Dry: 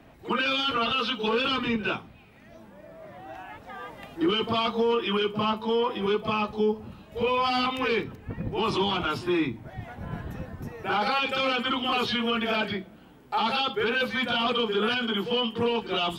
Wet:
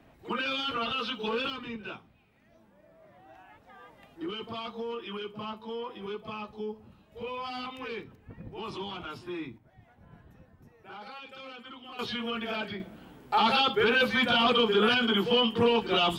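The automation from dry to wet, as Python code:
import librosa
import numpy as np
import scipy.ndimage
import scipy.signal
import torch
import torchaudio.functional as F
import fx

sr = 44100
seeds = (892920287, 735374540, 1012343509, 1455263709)

y = fx.gain(x, sr, db=fx.steps((0.0, -5.5), (1.5, -12.0), (9.58, -19.0), (11.99, -7.0), (12.8, 2.0)))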